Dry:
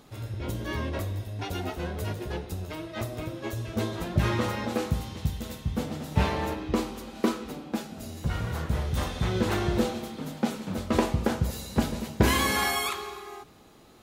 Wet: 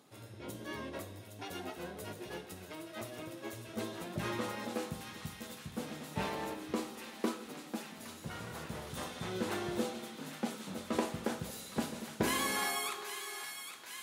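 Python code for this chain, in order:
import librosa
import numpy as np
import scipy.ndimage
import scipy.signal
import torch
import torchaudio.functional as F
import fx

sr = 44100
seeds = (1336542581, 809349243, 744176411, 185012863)

p1 = scipy.signal.sosfilt(scipy.signal.butter(2, 180.0, 'highpass', fs=sr, output='sos'), x)
p2 = fx.peak_eq(p1, sr, hz=9600.0, db=5.0, octaves=0.7)
p3 = p2 + fx.echo_wet_highpass(p2, sr, ms=814, feedback_pct=74, hz=1500.0, wet_db=-7.5, dry=0)
y = F.gain(torch.from_numpy(p3), -8.5).numpy()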